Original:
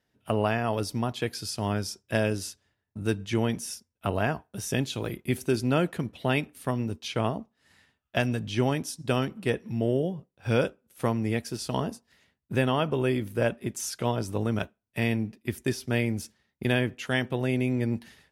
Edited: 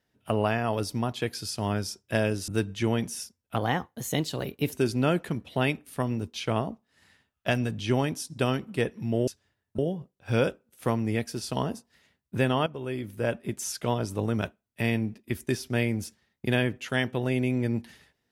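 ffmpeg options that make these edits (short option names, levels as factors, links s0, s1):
-filter_complex "[0:a]asplit=7[s0][s1][s2][s3][s4][s5][s6];[s0]atrim=end=2.482[s7];[s1]atrim=start=2.988:end=4.074[s8];[s2]atrim=start=4.07:end=5.41,asetpts=PTS-STARTPTS,asetrate=50715,aresample=44100,atrim=end_sample=51386,asetpts=PTS-STARTPTS[s9];[s3]atrim=start=5.406:end=9.962[s10];[s4]atrim=start=2.478:end=2.992[s11];[s5]atrim=start=9.958:end=12.84,asetpts=PTS-STARTPTS,afade=t=out:st=2.878:d=0.004:c=hsin:silence=0.223872[s12];[s6]atrim=start=12.84,asetpts=PTS-STARTPTS,afade=t=in:d=0.86:silence=0.223872[s13];[s7][s8]acrossfade=d=0.004:c1=hsin:c2=hsin[s14];[s14][s9]acrossfade=d=0.004:c1=hsin:c2=hsin[s15];[s15][s10]acrossfade=d=0.004:c1=hsin:c2=hsin[s16];[s16][s11]acrossfade=d=0.004:c1=hsin:c2=hsin[s17];[s12][s13]concat=n=2:v=0:a=1[s18];[s17][s18]acrossfade=d=0.004:c1=hsin:c2=hsin"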